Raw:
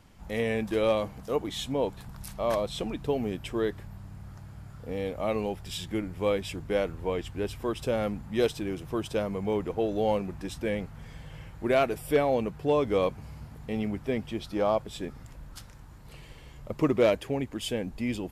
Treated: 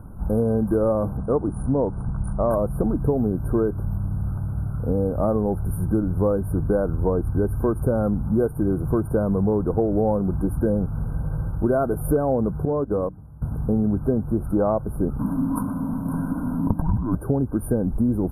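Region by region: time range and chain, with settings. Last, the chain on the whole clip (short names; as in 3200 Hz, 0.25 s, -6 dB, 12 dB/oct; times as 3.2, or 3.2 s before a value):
1.17–2.51 Chebyshev low-pass 10000 Hz, order 10 + mismatched tape noise reduction decoder only
12.65–13.42 compressor 4:1, threshold -32 dBFS + gate -36 dBFS, range -17 dB + notches 60/120/180/240/300 Hz
15.19–17.15 bell 1300 Hz +12.5 dB 0.25 oct + frequency shift -310 Hz + negative-ratio compressor -31 dBFS
whole clip: FFT band-reject 1600–9000 Hz; low shelf 330 Hz +11 dB; compressor, threshold -26 dBFS; gain +8.5 dB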